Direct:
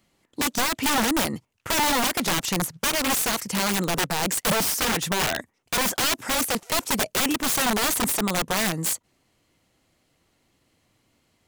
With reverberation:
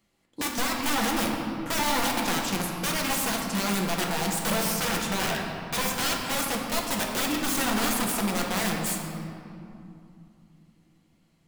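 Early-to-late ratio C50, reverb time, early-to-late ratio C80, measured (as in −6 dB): 2.0 dB, 2.7 s, 3.5 dB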